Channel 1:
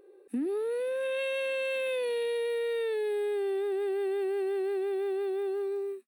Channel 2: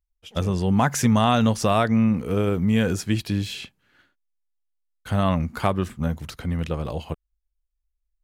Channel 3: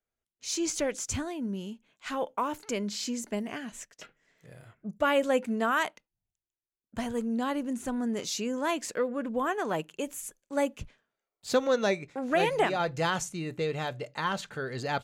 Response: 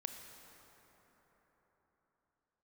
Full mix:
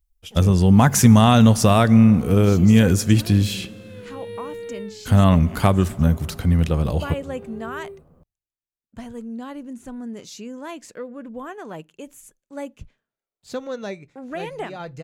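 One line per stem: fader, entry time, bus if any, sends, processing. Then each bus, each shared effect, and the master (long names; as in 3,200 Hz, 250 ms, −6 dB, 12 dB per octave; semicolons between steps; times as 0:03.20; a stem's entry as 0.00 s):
−5.0 dB, 2.00 s, no send, automatic ducking −15 dB, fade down 0.25 s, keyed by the second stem
0.0 dB, 0.00 s, send −9.5 dB, high-shelf EQ 5,900 Hz +9.5 dB
−6.5 dB, 2.00 s, no send, no processing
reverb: on, RT60 4.6 s, pre-delay 22 ms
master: low-shelf EQ 250 Hz +8.5 dB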